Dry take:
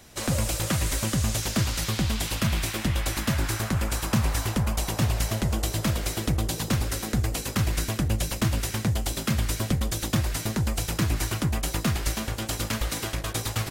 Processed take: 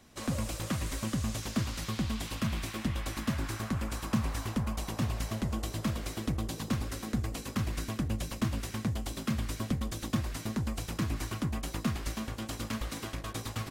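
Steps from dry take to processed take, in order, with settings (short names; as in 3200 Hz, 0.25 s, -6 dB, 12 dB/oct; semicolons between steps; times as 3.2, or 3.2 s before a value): high shelf 6700 Hz -5.5 dB; small resonant body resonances 240/1100 Hz, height 7 dB, ringing for 35 ms; gain -8.5 dB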